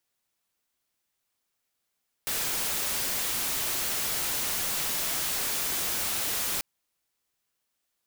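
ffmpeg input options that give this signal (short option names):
-f lavfi -i "anoisesrc=c=white:a=0.058:d=4.34:r=44100:seed=1"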